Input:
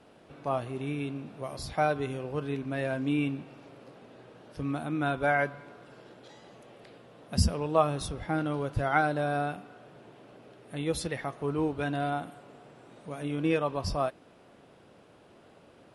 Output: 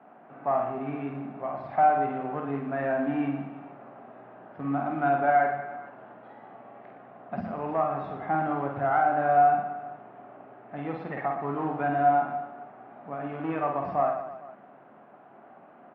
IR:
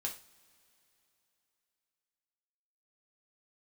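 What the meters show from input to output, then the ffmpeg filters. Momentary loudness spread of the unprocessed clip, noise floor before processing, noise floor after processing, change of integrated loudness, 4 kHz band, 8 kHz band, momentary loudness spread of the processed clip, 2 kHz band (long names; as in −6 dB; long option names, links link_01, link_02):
14 LU, −57 dBFS, −53 dBFS, +3.5 dB, below −15 dB, below −35 dB, 20 LU, 0.0 dB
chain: -filter_complex "[0:a]aemphasis=mode=reproduction:type=cd,alimiter=limit=-19dB:level=0:latency=1:release=281,asoftclip=type=tanh:threshold=-20.5dB,acrusher=bits=5:mode=log:mix=0:aa=0.000001,highpass=frequency=160:width=0.5412,highpass=frequency=160:width=1.3066,equalizer=frequency=170:width_type=q:width=4:gain=-5,equalizer=frequency=330:width_type=q:width=4:gain=-5,equalizer=frequency=480:width_type=q:width=4:gain=-9,equalizer=frequency=740:width_type=q:width=4:gain=9,equalizer=frequency=1200:width_type=q:width=4:gain=3,lowpass=frequency=2000:width=0.5412,lowpass=frequency=2000:width=1.3066,asplit=2[link_01][link_02];[link_02]aecho=0:1:50|115|199.5|309.4|452.2:0.631|0.398|0.251|0.158|0.1[link_03];[link_01][link_03]amix=inputs=2:normalize=0,volume=2.5dB" -ar 44100 -c:a aac -b:a 48k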